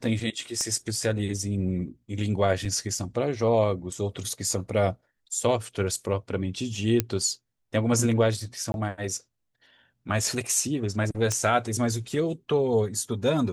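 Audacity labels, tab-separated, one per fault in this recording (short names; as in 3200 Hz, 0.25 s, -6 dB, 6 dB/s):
0.610000	0.610000	pop -18 dBFS
2.650000	2.660000	gap 5.1 ms
7.000000	7.000000	pop -7 dBFS
8.720000	8.740000	gap 21 ms
11.320000	11.320000	pop -13 dBFS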